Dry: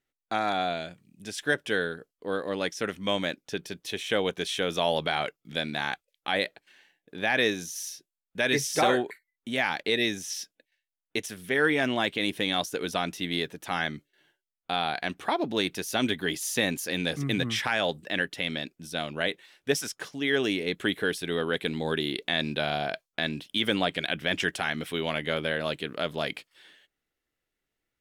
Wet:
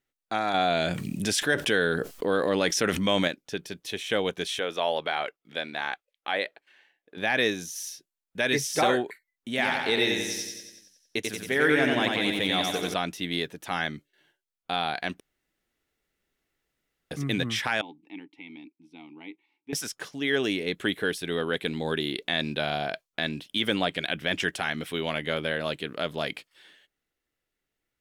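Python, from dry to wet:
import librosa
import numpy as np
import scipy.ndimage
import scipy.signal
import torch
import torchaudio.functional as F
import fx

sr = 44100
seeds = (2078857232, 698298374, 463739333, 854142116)

y = fx.env_flatten(x, sr, amount_pct=70, at=(0.54, 3.28))
y = fx.bass_treble(y, sr, bass_db=-14, treble_db=-9, at=(4.59, 7.17))
y = fx.echo_feedback(y, sr, ms=91, feedback_pct=58, wet_db=-3.5, at=(9.49, 12.94))
y = fx.vowel_filter(y, sr, vowel='u', at=(17.81, 19.73))
y = fx.edit(y, sr, fx.room_tone_fill(start_s=15.2, length_s=1.91), tone=tone)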